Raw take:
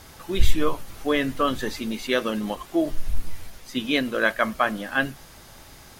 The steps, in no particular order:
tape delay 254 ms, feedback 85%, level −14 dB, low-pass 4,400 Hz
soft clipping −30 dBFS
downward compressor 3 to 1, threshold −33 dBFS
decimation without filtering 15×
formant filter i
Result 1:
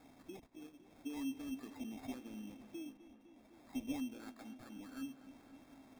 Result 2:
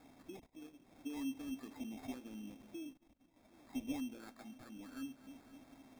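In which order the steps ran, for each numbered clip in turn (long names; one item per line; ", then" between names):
downward compressor, then soft clipping, then formant filter, then decimation without filtering, then tape delay
tape delay, then downward compressor, then soft clipping, then formant filter, then decimation without filtering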